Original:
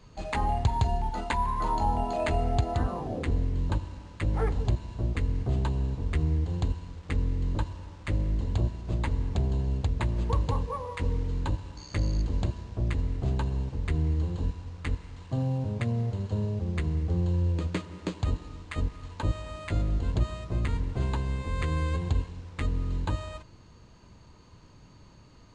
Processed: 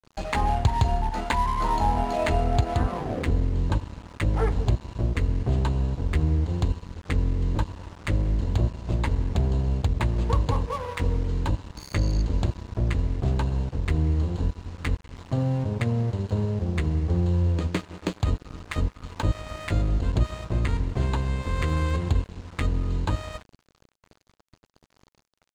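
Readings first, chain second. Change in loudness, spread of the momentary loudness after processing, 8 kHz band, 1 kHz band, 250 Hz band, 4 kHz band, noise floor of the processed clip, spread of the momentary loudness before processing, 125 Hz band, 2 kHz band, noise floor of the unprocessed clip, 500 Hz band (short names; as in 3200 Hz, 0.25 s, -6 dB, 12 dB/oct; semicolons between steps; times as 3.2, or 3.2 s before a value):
+3.5 dB, 6 LU, n/a, +4.0 dB, +4.0 dB, +5.0 dB, -68 dBFS, 7 LU, +3.5 dB, +5.0 dB, -53 dBFS, +4.0 dB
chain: in parallel at +1.5 dB: compressor, threshold -39 dBFS, peak gain reduction 19 dB; on the sum: crossover distortion -40 dBFS; gain +3 dB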